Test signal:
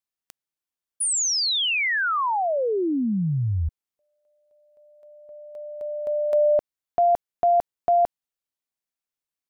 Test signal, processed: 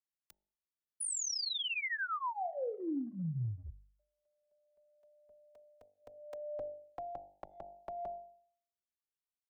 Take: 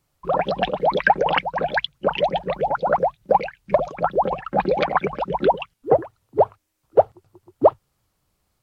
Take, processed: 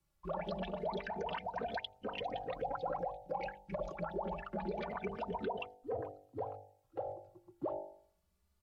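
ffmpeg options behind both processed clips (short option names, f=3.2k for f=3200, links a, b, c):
-filter_complex "[0:a]equalizer=f=140:t=o:w=0.22:g=-12.5,bandreject=f=49.47:t=h:w=4,bandreject=f=98.94:t=h:w=4,bandreject=f=148.41:t=h:w=4,bandreject=f=197.88:t=h:w=4,bandreject=f=247.35:t=h:w=4,bandreject=f=296.82:t=h:w=4,bandreject=f=346.29:t=h:w=4,bandreject=f=395.76:t=h:w=4,bandreject=f=445.23:t=h:w=4,bandreject=f=494.7:t=h:w=4,bandreject=f=544.17:t=h:w=4,bandreject=f=593.64:t=h:w=4,bandreject=f=643.11:t=h:w=4,bandreject=f=692.58:t=h:w=4,bandreject=f=742.05:t=h:w=4,bandreject=f=791.52:t=h:w=4,bandreject=f=840.99:t=h:w=4,bandreject=f=890.46:t=h:w=4,acrossover=split=190|530|1400[a][b][c][d];[a]acontrast=79[e];[e][b][c][d]amix=inputs=4:normalize=0,alimiter=limit=-12.5dB:level=0:latency=1:release=96,acompressor=threshold=-22dB:ratio=6:attack=2.2:release=125:knee=6:detection=peak,asplit=2[f][g];[g]adelay=3.1,afreqshift=0.26[h];[f][h]amix=inputs=2:normalize=1,volume=-8.5dB"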